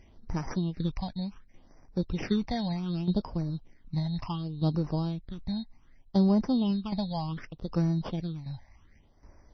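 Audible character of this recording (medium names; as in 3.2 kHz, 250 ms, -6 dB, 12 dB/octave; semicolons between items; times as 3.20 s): aliases and images of a low sample rate 4 kHz, jitter 0%; phasing stages 8, 0.67 Hz, lowest notch 360–3300 Hz; tremolo saw down 1.3 Hz, depth 65%; MP3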